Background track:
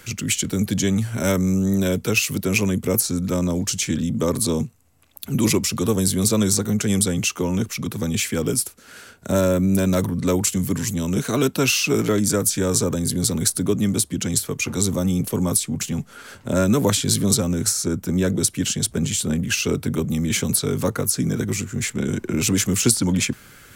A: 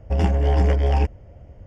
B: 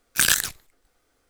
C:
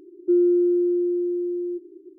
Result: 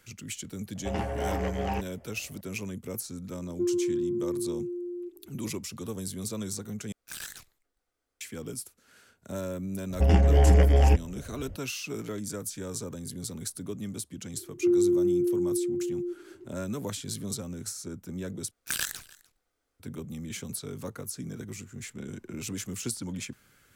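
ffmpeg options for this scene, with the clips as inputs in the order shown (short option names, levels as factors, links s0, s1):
-filter_complex "[1:a]asplit=2[s0][s1];[3:a]asplit=2[s2][s3];[2:a]asplit=2[s4][s5];[0:a]volume=0.158[s6];[s0]asplit=2[s7][s8];[s8]highpass=f=720:p=1,volume=10,asoftclip=type=tanh:threshold=0.473[s9];[s7][s9]amix=inputs=2:normalize=0,lowpass=f=2500:p=1,volume=0.501[s10];[s2]acontrast=24[s11];[s4]asoftclip=type=tanh:threshold=0.126[s12];[s1]equalizer=f=960:w=3.2:g=-5[s13];[s5]aecho=1:1:298:0.0708[s14];[s6]asplit=3[s15][s16][s17];[s15]atrim=end=6.924[s18];[s12]atrim=end=1.29,asetpts=PTS-STARTPTS,volume=0.168[s19];[s16]atrim=start=8.206:end=18.514[s20];[s14]atrim=end=1.29,asetpts=PTS-STARTPTS,volume=0.251[s21];[s17]atrim=start=19.796[s22];[s10]atrim=end=1.66,asetpts=PTS-STARTPTS,volume=0.2,afade=t=in:d=0.004:c=hsin,afade=t=out:st=1.656:d=0.004:c=hsin,adelay=750[s23];[s11]atrim=end=2.18,asetpts=PTS-STARTPTS,volume=0.2,afade=t=in:d=0.004:c=hsin,afade=t=out:st=2.176:d=0.004:c=hsin,adelay=3310[s24];[s13]atrim=end=1.66,asetpts=PTS-STARTPTS,volume=0.944,afade=t=in:d=0.004:c=hsin,afade=t=out:st=1.656:d=0.004:c=hsin,adelay=9900[s25];[s3]atrim=end=2.18,asetpts=PTS-STARTPTS,volume=0.596,afade=t=in:d=0.004:c=hsin,afade=t=out:st=2.176:d=0.004:c=hsin,adelay=14350[s26];[s18][s19]acrossfade=d=0.004:c1=hsin:c2=hsin[s27];[s27][s20]acrossfade=d=0.004:c1=hsin:c2=hsin[s28];[s28][s21]acrossfade=d=0.004:c1=hsin:c2=hsin[s29];[s29][s22]acrossfade=d=0.004:c1=hsin:c2=hsin[s30];[s30][s23][s24][s25][s26]amix=inputs=5:normalize=0"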